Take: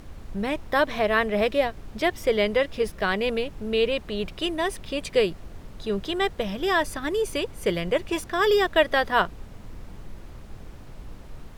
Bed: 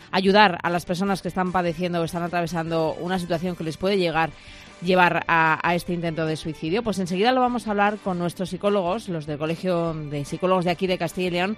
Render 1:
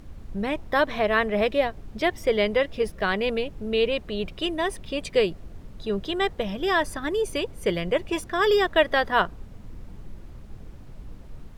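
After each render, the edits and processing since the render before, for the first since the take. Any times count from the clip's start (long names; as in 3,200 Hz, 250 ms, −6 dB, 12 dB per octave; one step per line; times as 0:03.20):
broadband denoise 6 dB, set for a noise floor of −43 dBFS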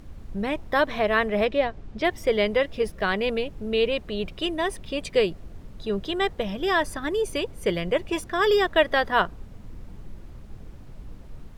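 0:01.45–0:02.05: high-frequency loss of the air 73 metres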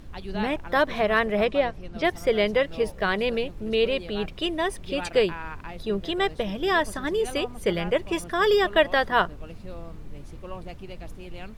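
mix in bed −18.5 dB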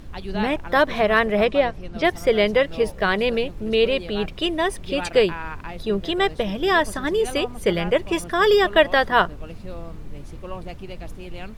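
level +4 dB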